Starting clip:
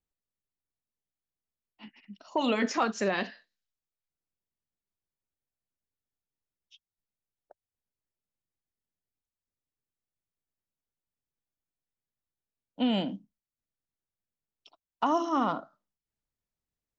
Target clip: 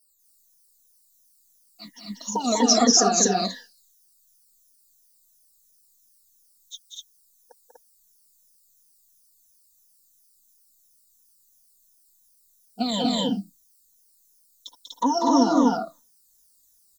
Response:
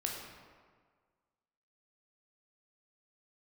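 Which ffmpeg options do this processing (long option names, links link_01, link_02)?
-filter_complex "[0:a]afftfilt=real='re*pow(10,23/40*sin(2*PI*(1.1*log(max(b,1)*sr/1024/100)/log(2)-(-2.9)*(pts-256)/sr)))':imag='im*pow(10,23/40*sin(2*PI*(1.1*log(max(b,1)*sr/1024/100)/log(2)-(-2.9)*(pts-256)/sr)))':win_size=1024:overlap=0.75,equalizer=frequency=2900:width=1.4:gain=-8,aecho=1:1:4.2:0.6,acrossover=split=880[link_01][link_02];[link_02]acompressor=threshold=-35dB:ratio=10[link_03];[link_01][link_03]amix=inputs=2:normalize=0,aexciter=amount=11.2:drive=5.4:freq=3700,asplit=2[link_04][link_05];[link_05]aecho=0:1:192.4|244.9:0.631|1[link_06];[link_04][link_06]amix=inputs=2:normalize=0"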